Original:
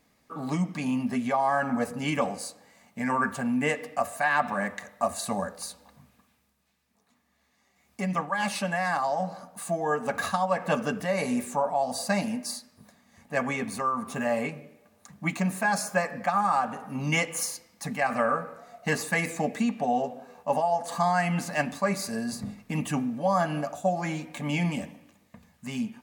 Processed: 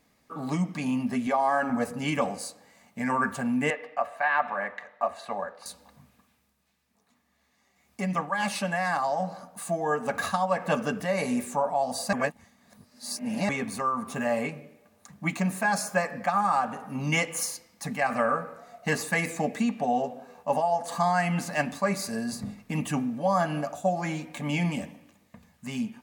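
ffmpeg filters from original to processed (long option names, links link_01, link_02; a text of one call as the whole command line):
ffmpeg -i in.wav -filter_complex "[0:a]asettb=1/sr,asplit=3[link_01][link_02][link_03];[link_01]atrim=end=1.274[link_04];[link_02]atrim=start=1.27:end=1.7,asetpts=PTS-STARTPTS,afade=type=in:duration=0.004:curve=qsin,afade=type=out:start_time=0.426:duration=0.004:curve=qsin,lowshelf=frequency=190:width_type=q:width=1.5:gain=-8[link_05];[link_03]atrim=start=1.696[link_06];[link_04][link_05]acrossfade=duration=0.004:curve1=hsin:curve2=qsin[link_07];[link_07][link_06]acrossfade=duration=0.004:curve1=qsin:curve2=hsin,asettb=1/sr,asplit=3[link_08][link_09][link_10];[link_08]atrim=end=3.704[link_11];[link_09]atrim=start=3.7:end=5.66,asetpts=PTS-STARTPTS,afade=type=in:duration=0.004:curve=qsin,afade=type=out:start_time=1.956:duration=0.004:curve=qsin,acrossover=split=390 3500:gain=0.178 1 0.0708[link_12][link_13][link_14];[link_12][link_13][link_14]amix=inputs=3:normalize=0[link_15];[link_10]atrim=start=5.656[link_16];[link_11][link_15]acrossfade=duration=0.004:curve1=hsin:curve2=qsin[link_17];[link_17][link_16]acrossfade=duration=0.004:curve1=qsin:curve2=hsin,asplit=3[link_18][link_19][link_20];[link_18]atrim=end=12.132[link_21];[link_19]atrim=start=12.128:end=13.492,asetpts=PTS-STARTPTS,areverse[link_22];[link_20]atrim=start=13.488[link_23];[link_21][link_22]acrossfade=duration=0.004:curve1=hsin:curve2=hsin[link_24];[link_24][link_23]acrossfade=duration=0.004:curve1=hsin:curve2=hsin" out.wav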